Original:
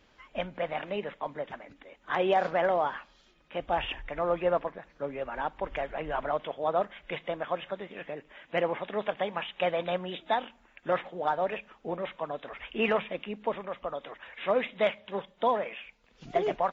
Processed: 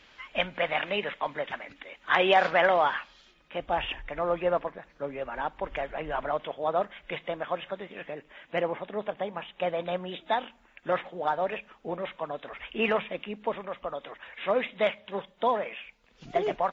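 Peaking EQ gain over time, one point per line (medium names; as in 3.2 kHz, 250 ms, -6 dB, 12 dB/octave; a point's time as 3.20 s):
peaking EQ 2.7 kHz 2.8 oct
2.90 s +11 dB
3.62 s +1.5 dB
8.43 s +1.5 dB
8.94 s -6 dB
9.45 s -6 dB
10.36 s +1.5 dB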